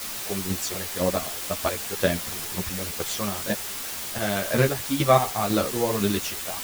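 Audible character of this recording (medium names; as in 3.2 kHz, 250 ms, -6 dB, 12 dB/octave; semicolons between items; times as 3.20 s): chopped level 2 Hz, depth 60%, duty 35%; a quantiser's noise floor 6-bit, dither triangular; a shimmering, thickened sound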